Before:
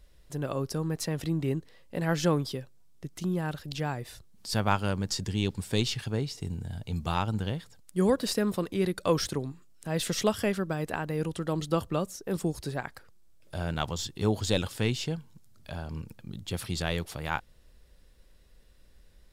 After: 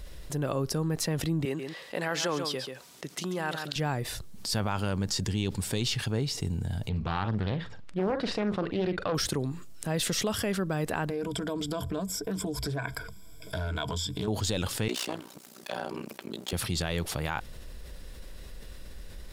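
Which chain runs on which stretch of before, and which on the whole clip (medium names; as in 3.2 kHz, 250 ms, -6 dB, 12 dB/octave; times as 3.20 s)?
1.45–3.76 s: frequency weighting A + delay 137 ms -11.5 dB
6.89–9.15 s: Chebyshev low-pass 2.5 kHz + doubling 43 ms -13 dB + loudspeaker Doppler distortion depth 0.48 ms
11.09–14.28 s: rippled EQ curve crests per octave 1.7, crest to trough 17 dB + compression 4:1, threshold -35 dBFS + loudspeaker Doppler distortion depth 0.16 ms
14.88–16.53 s: comb filter that takes the minimum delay 5.2 ms + high-pass 260 Hz 24 dB/octave + AM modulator 61 Hz, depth 75%
whole clip: peak limiter -21 dBFS; level flattener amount 50%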